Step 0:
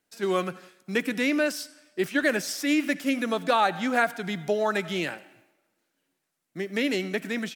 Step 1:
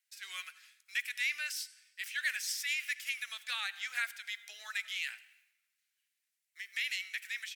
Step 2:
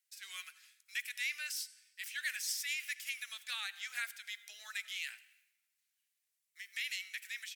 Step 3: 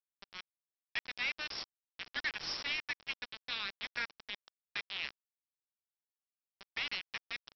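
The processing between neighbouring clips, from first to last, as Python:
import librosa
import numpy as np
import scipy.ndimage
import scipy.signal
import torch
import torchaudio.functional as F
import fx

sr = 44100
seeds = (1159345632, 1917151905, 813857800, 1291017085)

y1 = scipy.signal.sosfilt(scipy.signal.cheby1(3, 1.0, 2000.0, 'highpass', fs=sr, output='sos'), x)
y1 = y1 * librosa.db_to_amplitude(-3.0)
y2 = fx.high_shelf(y1, sr, hz=4000.0, db=7.5)
y2 = y2 * librosa.db_to_amplitude(-6.0)
y3 = fx.quant_dither(y2, sr, seeds[0], bits=6, dither='none')
y3 = scipy.signal.sosfilt(scipy.signal.cheby1(8, 1.0, 5500.0, 'lowpass', fs=sr, output='sos'), y3)
y3 = fx.buffer_crackle(y3, sr, first_s=0.99, period_s=0.92, block=1024, kind='zero')
y3 = y3 * librosa.db_to_amplitude(2.5)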